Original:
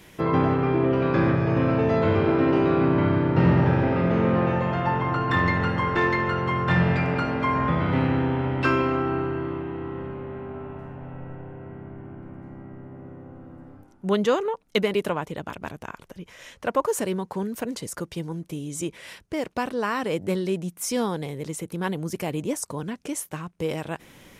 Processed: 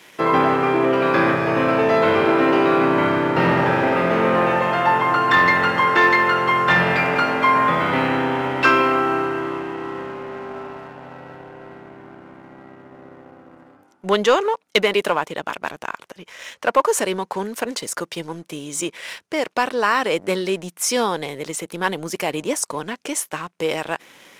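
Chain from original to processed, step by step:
meter weighting curve A
leveller curve on the samples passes 1
level +5.5 dB

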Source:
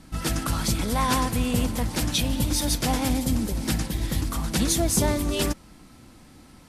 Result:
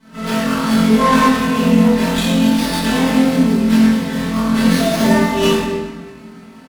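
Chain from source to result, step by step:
high-pass filter 180 Hz 12 dB per octave
high-shelf EQ 5,400 Hz −8.5 dB
mains-hum notches 60/120/180/240/300/360/420/480 Hz
comb filter 4.5 ms, depth 96%
flutter between parallel walls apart 3.9 metres, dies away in 0.37 s
convolution reverb RT60 1.4 s, pre-delay 7 ms, DRR −12.5 dB
windowed peak hold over 5 samples
level −7.5 dB

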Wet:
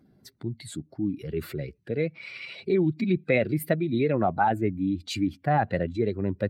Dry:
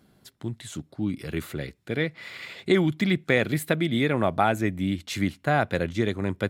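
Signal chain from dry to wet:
expanding power law on the bin magnitudes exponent 1.6
formants moved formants +2 semitones

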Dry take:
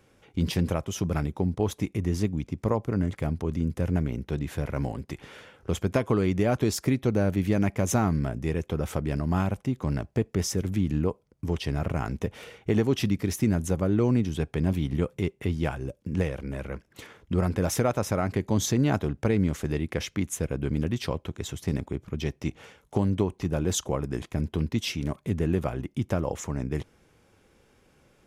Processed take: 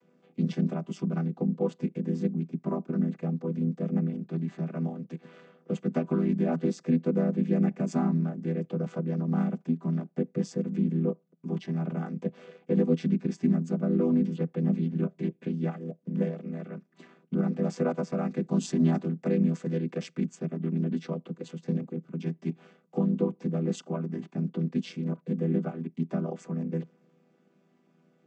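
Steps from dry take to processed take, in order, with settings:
channel vocoder with a chord as carrier minor triad, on E3
0:18.16–0:20.25: high-shelf EQ 4,300 Hz +8.5 dB

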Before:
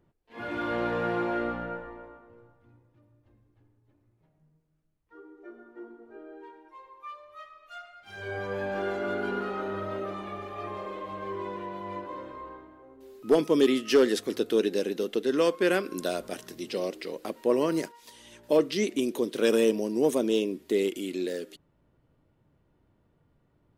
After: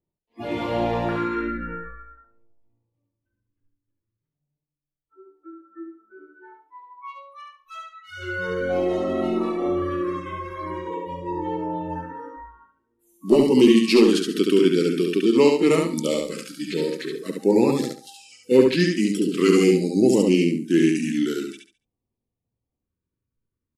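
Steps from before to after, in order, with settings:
pitch glide at a constant tempo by −4 semitones starting unshifted
auto-filter notch square 0.46 Hz 740–1,500 Hz
noise reduction from a noise print of the clip's start 25 dB
on a send: repeating echo 70 ms, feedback 25%, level −3.5 dB
on the sum: level +8 dB

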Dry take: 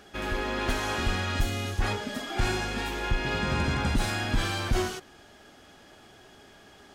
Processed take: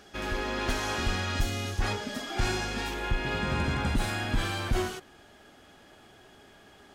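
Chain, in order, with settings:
parametric band 5,500 Hz +3.5 dB, from 0:02.94 −3.5 dB
level −1.5 dB

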